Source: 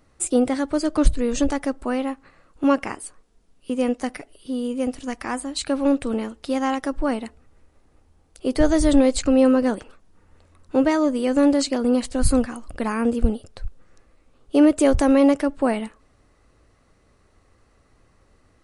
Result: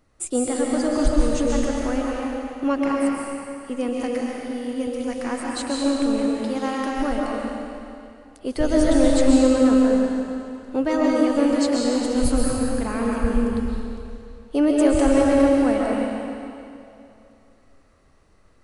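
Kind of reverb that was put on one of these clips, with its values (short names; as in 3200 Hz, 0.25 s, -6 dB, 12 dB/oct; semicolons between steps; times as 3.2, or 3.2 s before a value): digital reverb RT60 2.6 s, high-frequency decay 0.95×, pre-delay 95 ms, DRR -3.5 dB; gain -4.5 dB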